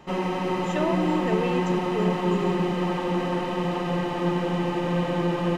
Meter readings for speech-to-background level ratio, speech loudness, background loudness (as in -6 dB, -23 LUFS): -4.5 dB, -30.5 LUFS, -26.0 LUFS